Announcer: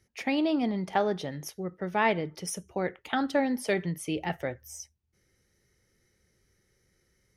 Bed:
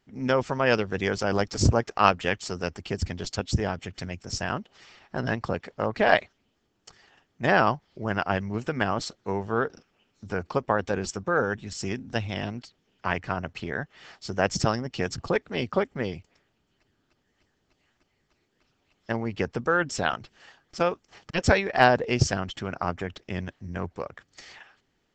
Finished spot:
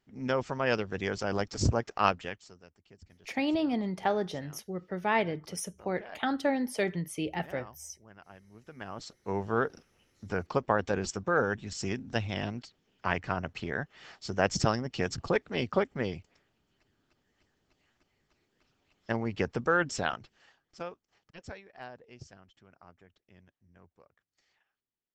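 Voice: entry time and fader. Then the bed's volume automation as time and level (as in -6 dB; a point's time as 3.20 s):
3.10 s, -2.0 dB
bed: 2.12 s -6 dB
2.67 s -26.5 dB
8.45 s -26.5 dB
9.38 s -2.5 dB
19.86 s -2.5 dB
21.74 s -27 dB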